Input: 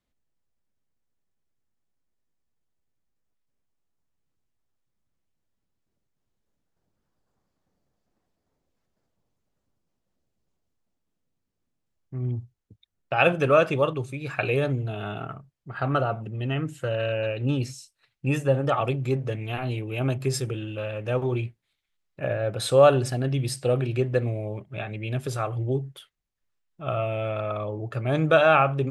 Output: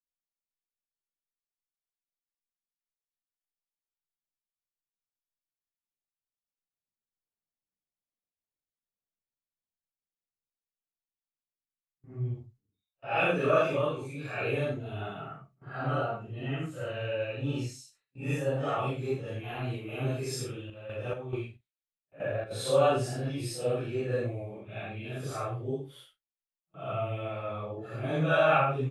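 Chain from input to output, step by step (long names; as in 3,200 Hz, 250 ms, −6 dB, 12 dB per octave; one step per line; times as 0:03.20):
random phases in long frames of 200 ms
low-shelf EQ 160 Hz −3 dB
noise gate with hold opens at −44 dBFS
0:20.46–0:22.51: square-wave tremolo 2.3 Hz, depth 65%, duty 55%
double-tracking delay 39 ms −13 dB
level −5.5 dB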